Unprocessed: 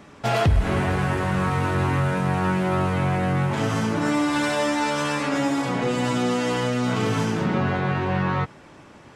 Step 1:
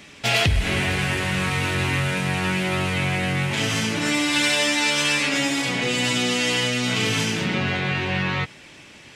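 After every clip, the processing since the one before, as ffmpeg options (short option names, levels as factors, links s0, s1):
-af "highshelf=f=1700:t=q:w=1.5:g=11,volume=0.794"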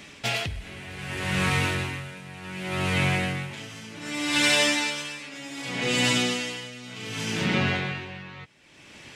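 -af "aeval=exprs='val(0)*pow(10,-18*(0.5-0.5*cos(2*PI*0.66*n/s))/20)':c=same"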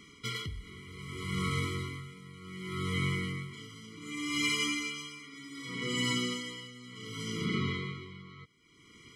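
-af "afftfilt=real='re*eq(mod(floor(b*sr/1024/480),2),0)':imag='im*eq(mod(floor(b*sr/1024/480),2),0)':win_size=1024:overlap=0.75,volume=0.473"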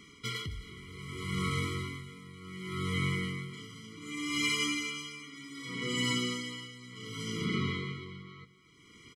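-af "aecho=1:1:260|520|780:0.141|0.0466|0.0154"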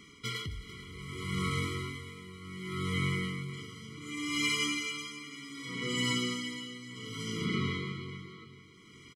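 -af "aecho=1:1:442|884|1326|1768:0.168|0.0739|0.0325|0.0143"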